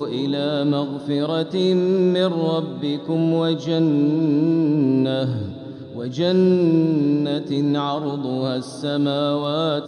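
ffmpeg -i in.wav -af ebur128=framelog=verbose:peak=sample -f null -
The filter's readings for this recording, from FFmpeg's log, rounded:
Integrated loudness:
  I:         -20.3 LUFS
  Threshold: -30.5 LUFS
Loudness range:
  LRA:         1.4 LU
  Threshold: -40.1 LUFS
  LRA low:   -20.8 LUFS
  LRA high:  -19.4 LUFS
Sample peak:
  Peak:       -7.4 dBFS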